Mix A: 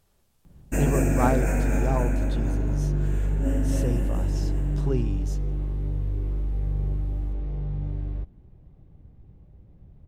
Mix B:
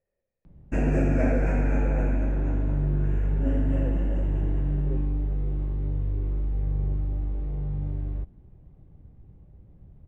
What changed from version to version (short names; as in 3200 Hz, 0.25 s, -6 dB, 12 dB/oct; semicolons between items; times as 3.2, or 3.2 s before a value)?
speech: add vocal tract filter e; master: add air absorption 210 m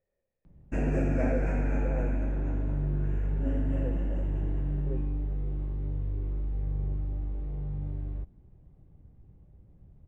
background -4.5 dB